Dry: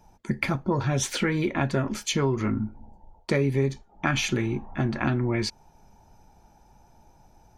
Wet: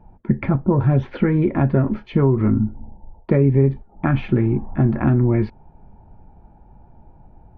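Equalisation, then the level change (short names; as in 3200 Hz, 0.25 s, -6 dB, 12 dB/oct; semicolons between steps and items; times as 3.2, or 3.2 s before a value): air absorption 320 m; tape spacing loss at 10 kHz 42 dB; low shelf 320 Hz +4 dB; +7.5 dB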